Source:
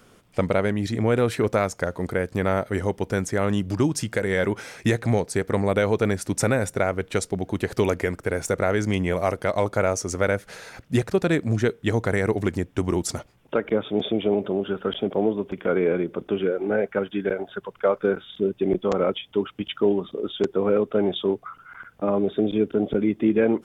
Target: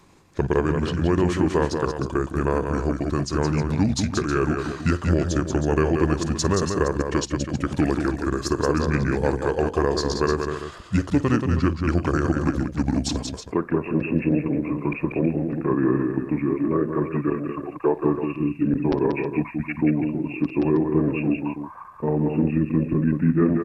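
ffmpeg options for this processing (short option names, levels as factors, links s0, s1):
-af "aecho=1:1:54|182|320:0.141|0.531|0.299,asetrate=33038,aresample=44100,atempo=1.33484"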